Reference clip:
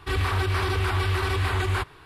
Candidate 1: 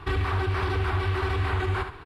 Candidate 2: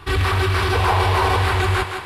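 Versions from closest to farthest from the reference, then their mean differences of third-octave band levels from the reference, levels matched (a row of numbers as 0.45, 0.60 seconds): 2, 1; 2.5, 4.0 decibels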